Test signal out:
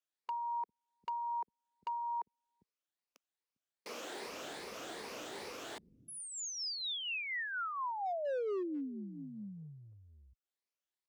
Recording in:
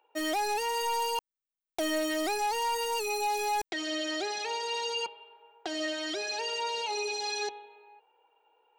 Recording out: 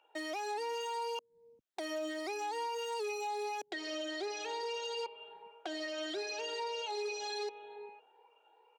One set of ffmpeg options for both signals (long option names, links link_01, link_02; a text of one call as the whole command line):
ffmpeg -i in.wav -filter_complex "[0:a]afftfilt=real='re*pow(10,7/40*sin(2*PI*(0.88*log(max(b,1)*sr/1024/100)/log(2)-(2.5)*(pts-256)/sr)))':imag='im*pow(10,7/40*sin(2*PI*(0.88*log(max(b,1)*sr/1024/100)/log(2)-(2.5)*(pts-256)/sr)))':win_size=1024:overlap=0.75,acrossover=split=190[link_01][link_02];[link_01]adelay=400[link_03];[link_03][link_02]amix=inputs=2:normalize=0,acompressor=threshold=-40dB:ratio=4,highpass=50,adynamicequalizer=threshold=0.00141:dfrequency=450:dqfactor=1.4:tfrequency=450:tqfactor=1.4:attack=5:release=100:ratio=0.375:range=3:mode=boostabove:tftype=bell,asoftclip=type=hard:threshold=-34dB,acrossover=split=200 7600:gain=0.0708 1 0.224[link_04][link_05][link_06];[link_04][link_05][link_06]amix=inputs=3:normalize=0,volume=1dB" out.wav